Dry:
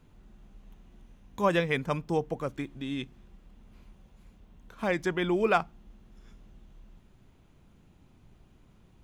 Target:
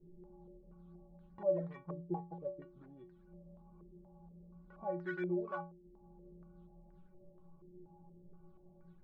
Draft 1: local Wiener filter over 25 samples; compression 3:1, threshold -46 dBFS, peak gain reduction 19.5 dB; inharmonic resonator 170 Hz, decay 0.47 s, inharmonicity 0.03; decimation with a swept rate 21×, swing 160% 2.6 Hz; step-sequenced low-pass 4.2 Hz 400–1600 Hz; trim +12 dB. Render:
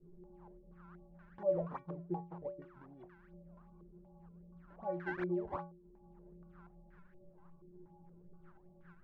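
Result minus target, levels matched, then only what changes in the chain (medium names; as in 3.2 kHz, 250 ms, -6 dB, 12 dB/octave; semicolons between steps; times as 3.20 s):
decimation with a swept rate: distortion +8 dB
change: decimation with a swept rate 7×, swing 160% 2.6 Hz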